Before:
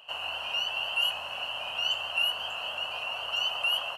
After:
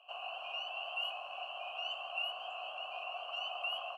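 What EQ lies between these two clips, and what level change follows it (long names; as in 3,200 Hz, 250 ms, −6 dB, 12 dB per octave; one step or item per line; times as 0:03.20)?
formant filter a
low-shelf EQ 66 Hz +11.5 dB
high-shelf EQ 6,800 Hz +10 dB
+1.5 dB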